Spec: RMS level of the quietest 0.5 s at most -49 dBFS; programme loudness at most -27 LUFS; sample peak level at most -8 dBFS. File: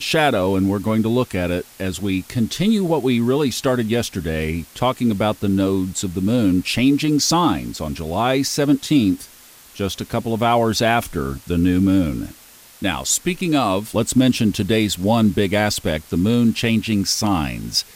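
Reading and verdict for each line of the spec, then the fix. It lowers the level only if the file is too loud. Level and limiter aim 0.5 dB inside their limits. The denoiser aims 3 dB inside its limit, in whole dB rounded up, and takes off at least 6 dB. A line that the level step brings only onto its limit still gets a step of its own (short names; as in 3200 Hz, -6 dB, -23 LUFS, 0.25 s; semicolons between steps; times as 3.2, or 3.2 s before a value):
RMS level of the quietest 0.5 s -45 dBFS: fail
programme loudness -19.5 LUFS: fail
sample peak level -5.0 dBFS: fail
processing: gain -8 dB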